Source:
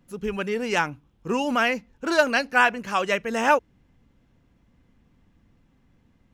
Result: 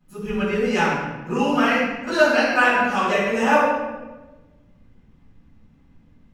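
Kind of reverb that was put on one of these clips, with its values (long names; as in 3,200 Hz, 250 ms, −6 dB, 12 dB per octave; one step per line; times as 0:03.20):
rectangular room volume 700 cubic metres, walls mixed, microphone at 8.2 metres
level −11.5 dB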